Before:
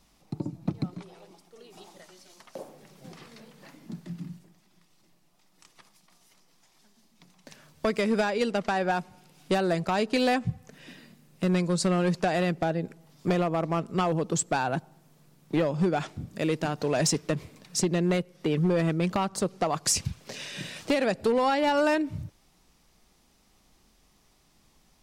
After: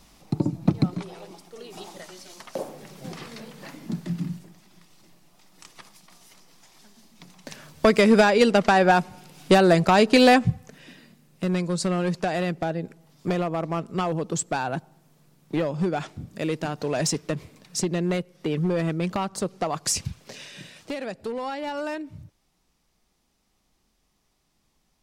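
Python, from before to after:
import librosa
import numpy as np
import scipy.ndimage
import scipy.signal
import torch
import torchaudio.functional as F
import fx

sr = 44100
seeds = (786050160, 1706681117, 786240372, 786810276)

y = fx.gain(x, sr, db=fx.line((10.37, 9.0), (10.9, 0.0), (20.19, 0.0), (20.74, -7.0)))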